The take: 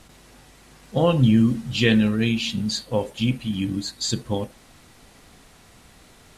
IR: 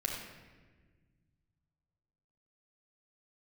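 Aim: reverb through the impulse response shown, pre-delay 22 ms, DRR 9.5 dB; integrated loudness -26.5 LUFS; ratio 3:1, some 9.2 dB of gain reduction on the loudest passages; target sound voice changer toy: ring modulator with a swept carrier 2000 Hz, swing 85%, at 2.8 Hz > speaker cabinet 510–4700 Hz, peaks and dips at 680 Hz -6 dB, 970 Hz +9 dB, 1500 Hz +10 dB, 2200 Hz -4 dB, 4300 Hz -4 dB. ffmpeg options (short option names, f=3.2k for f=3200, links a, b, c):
-filter_complex "[0:a]acompressor=threshold=-25dB:ratio=3,asplit=2[a][b];[1:a]atrim=start_sample=2205,adelay=22[c];[b][c]afir=irnorm=-1:irlink=0,volume=-13dB[d];[a][d]amix=inputs=2:normalize=0,aeval=exprs='val(0)*sin(2*PI*2000*n/s+2000*0.85/2.8*sin(2*PI*2.8*n/s))':c=same,highpass=510,equalizer=f=680:t=q:w=4:g=-6,equalizer=f=970:t=q:w=4:g=9,equalizer=f=1.5k:t=q:w=4:g=10,equalizer=f=2.2k:t=q:w=4:g=-4,equalizer=f=4.3k:t=q:w=4:g=-4,lowpass=f=4.7k:w=0.5412,lowpass=f=4.7k:w=1.3066,volume=1dB"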